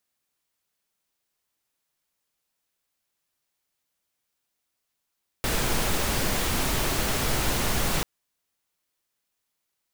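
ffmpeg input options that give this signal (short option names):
-f lavfi -i "anoisesrc=c=pink:a=0.288:d=2.59:r=44100:seed=1"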